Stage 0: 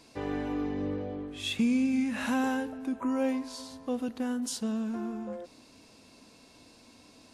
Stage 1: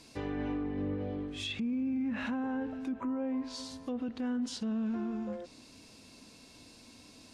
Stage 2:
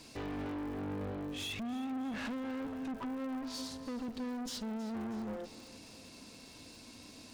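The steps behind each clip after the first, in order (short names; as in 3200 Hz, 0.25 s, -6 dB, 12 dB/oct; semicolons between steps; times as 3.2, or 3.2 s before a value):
treble ducked by the level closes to 1300 Hz, closed at -26 dBFS; bell 750 Hz -5.5 dB 2.7 oct; limiter -31 dBFS, peak gain reduction 10 dB; gain +3 dB
tube stage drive 41 dB, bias 0.5; crackle 150/s -53 dBFS; split-band echo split 410 Hz, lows 0.151 s, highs 0.32 s, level -15.5 dB; gain +4 dB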